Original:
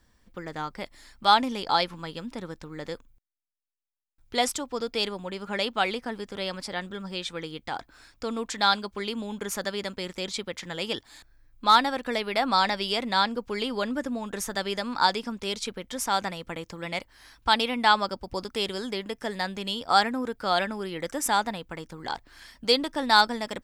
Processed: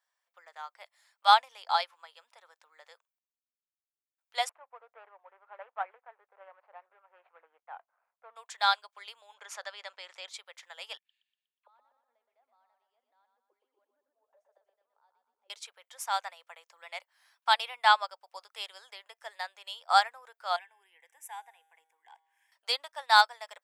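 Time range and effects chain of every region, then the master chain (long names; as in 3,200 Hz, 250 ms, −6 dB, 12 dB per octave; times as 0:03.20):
0:04.49–0:08.36: running median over 25 samples + low-pass filter 2,100 Hz 24 dB per octave
0:09.34–0:10.28: low-pass filter 5,800 Hz + envelope flattener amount 50%
0:10.97–0:15.50: envelope filter 240–3,700 Hz, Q 15, down, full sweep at −26 dBFS + repeating echo 121 ms, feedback 47%, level −6 dB
0:20.56–0:22.52: parametric band 1,000 Hz −4 dB 0.94 octaves + phaser with its sweep stopped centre 880 Hz, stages 8 + tuned comb filter 160 Hz, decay 1.6 s, mix 50%
whole clip: Butterworth high-pass 630 Hz 36 dB per octave; parametric band 4,700 Hz −3 dB 0.77 octaves; expander for the loud parts 1.5 to 1, over −42 dBFS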